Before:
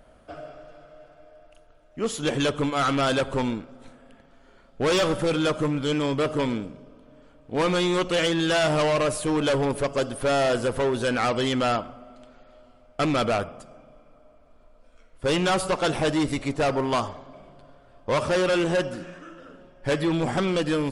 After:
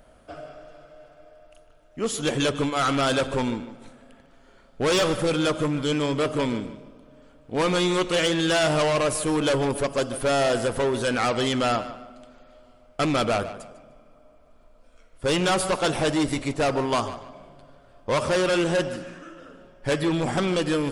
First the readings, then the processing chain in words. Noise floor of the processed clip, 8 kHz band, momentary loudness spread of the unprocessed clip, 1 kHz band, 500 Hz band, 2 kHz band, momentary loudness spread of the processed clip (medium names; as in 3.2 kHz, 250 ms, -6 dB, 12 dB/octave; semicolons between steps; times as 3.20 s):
-55 dBFS, +3.5 dB, 12 LU, +0.5 dB, 0.0 dB, +0.5 dB, 13 LU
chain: treble shelf 5.7 kHz +5.5 dB; tape echo 149 ms, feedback 32%, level -12.5 dB, low-pass 5.5 kHz